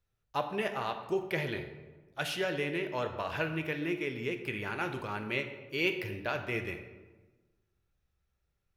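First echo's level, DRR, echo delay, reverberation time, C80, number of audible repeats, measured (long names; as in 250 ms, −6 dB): no echo audible, 5.5 dB, no echo audible, 1.3 s, 10.5 dB, no echo audible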